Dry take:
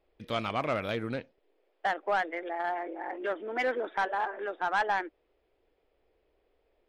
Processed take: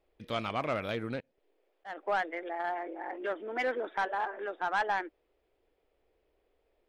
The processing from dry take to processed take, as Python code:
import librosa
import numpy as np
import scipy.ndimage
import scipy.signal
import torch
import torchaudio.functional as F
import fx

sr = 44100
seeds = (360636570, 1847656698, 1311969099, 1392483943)

y = fx.auto_swell(x, sr, attack_ms=196.0, at=(1.2, 1.97))
y = y * 10.0 ** (-2.0 / 20.0)